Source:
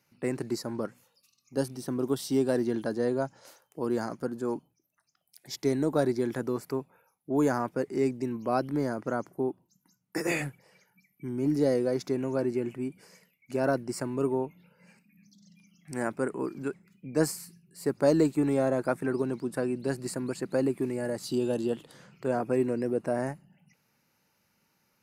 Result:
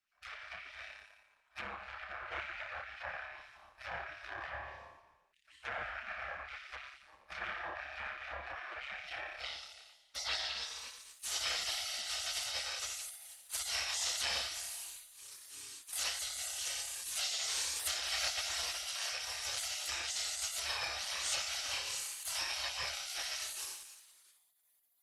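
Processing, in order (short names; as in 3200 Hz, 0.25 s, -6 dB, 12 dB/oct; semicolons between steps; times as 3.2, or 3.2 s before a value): FFT order left unsorted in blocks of 64 samples; low-pass sweep 760 Hz -> 7200 Hz, 8.64–11.08; rotary speaker horn 8 Hz, later 0.6 Hz, at 17.3; in parallel at -5 dB: wavefolder -30 dBFS; on the sum: flutter echo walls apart 5 m, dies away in 0.98 s; treble ducked by the level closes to 1900 Hz, closed at -23.5 dBFS; HPF 60 Hz 24 dB/oct; on a send at -9.5 dB: reverb RT60 1.0 s, pre-delay 3 ms; on the sum: spectral gate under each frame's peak -30 dB weak; high shelf 2400 Hz +10.5 dB; gain +6.5 dB; Opus 20 kbps 48000 Hz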